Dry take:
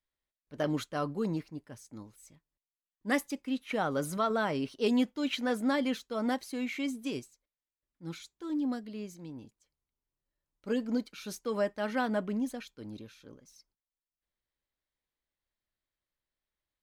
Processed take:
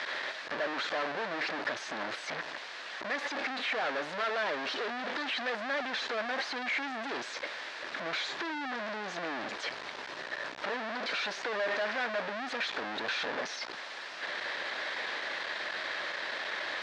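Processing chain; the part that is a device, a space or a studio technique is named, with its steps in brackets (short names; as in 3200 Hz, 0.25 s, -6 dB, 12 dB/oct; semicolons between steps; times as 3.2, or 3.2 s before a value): home computer beeper (infinite clipping; speaker cabinet 510–4200 Hz, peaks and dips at 610 Hz +3 dB, 1700 Hz +7 dB, 3000 Hz -3 dB); gain +4.5 dB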